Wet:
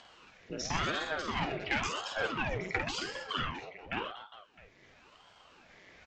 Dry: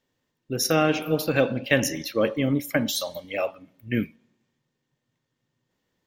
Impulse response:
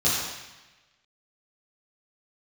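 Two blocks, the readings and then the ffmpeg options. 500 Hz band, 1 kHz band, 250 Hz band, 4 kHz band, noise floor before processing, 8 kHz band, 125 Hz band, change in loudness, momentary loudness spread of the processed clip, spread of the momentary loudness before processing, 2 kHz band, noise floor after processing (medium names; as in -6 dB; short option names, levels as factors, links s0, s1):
-14.5 dB, -3.0 dB, -15.5 dB, -5.5 dB, -80 dBFS, -12.0 dB, -12.0 dB, -10.0 dB, 12 LU, 8 LU, -5.0 dB, -62 dBFS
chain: -af "aresample=16000,volume=7.94,asoftclip=hard,volume=0.126,aresample=44100,equalizer=f=2100:t=o:w=0.32:g=13,acompressor=mode=upward:threshold=0.0562:ratio=2.5,highpass=260,lowpass=5700,aecho=1:1:50|125|237.5|406.2|659.4:0.631|0.398|0.251|0.158|0.1,aeval=exprs='val(0)*sin(2*PI*610*n/s+610*0.85/0.94*sin(2*PI*0.94*n/s))':c=same,volume=0.422"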